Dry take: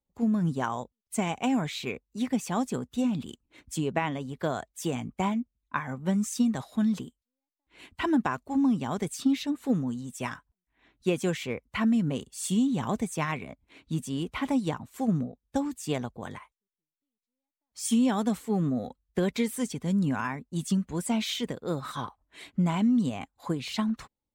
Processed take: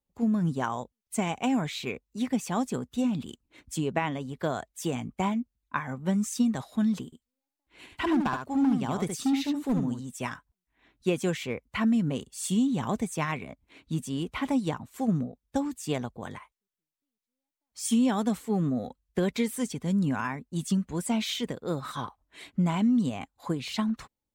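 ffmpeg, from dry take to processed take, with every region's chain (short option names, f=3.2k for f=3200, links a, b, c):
-filter_complex "[0:a]asettb=1/sr,asplit=3[a][b][c];[a]atrim=end=7.054[d];[b]atrim=start=7.05:end=10,asetpts=PTS-STARTPTS,afade=t=in:d=0.004:c=qsin,afade=t=out:st=2.946:d=0.004:c=qsin,volume=21.5dB,asoftclip=hard,volume=-21.5dB,aecho=1:1:73:0.531,atrim=end_sample=130095[e];[c]atrim=start=9.996[f];[d][e]acrossfade=d=0.004:c1=hsin:c2=qsin[g];[g][f]acrossfade=d=0.004:c1=qsin:c2=hsin"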